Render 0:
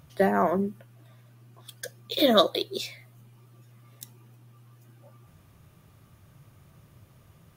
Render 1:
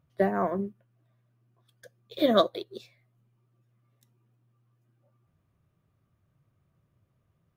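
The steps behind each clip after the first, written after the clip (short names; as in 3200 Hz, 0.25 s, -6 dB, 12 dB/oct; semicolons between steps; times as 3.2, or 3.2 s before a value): high shelf 3000 Hz -11 dB; notch 860 Hz, Q 12; upward expander 1.5:1, over -48 dBFS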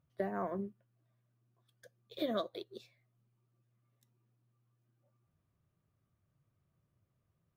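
compressor 6:1, threshold -24 dBFS, peak gain reduction 8.5 dB; gain -7.5 dB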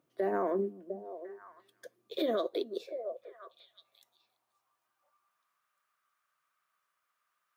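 delay with a stepping band-pass 0.35 s, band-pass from 200 Hz, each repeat 1.4 oct, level -10.5 dB; high-pass sweep 340 Hz -> 1300 Hz, 2.14–5.69; limiter -29 dBFS, peak gain reduction 10 dB; gain +6.5 dB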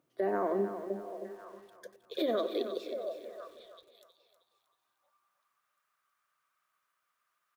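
feedback echo 0.315 s, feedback 37%, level -10 dB; lo-fi delay 92 ms, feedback 55%, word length 9-bit, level -13.5 dB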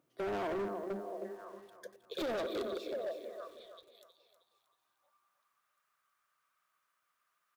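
overloaded stage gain 33.5 dB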